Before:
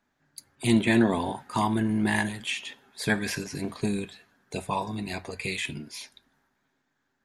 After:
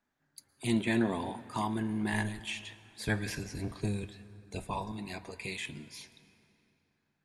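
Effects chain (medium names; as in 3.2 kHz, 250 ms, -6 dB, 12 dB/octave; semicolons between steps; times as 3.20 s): 2.12–4.92 s: octave divider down 1 oct, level +1 dB; reverberation RT60 3.0 s, pre-delay 105 ms, DRR 17 dB; trim -7.5 dB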